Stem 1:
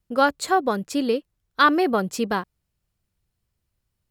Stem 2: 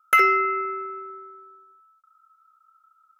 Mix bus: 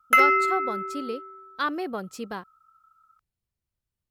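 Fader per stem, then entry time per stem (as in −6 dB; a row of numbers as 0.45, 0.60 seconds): −10.5, −0.5 decibels; 0.00, 0.00 seconds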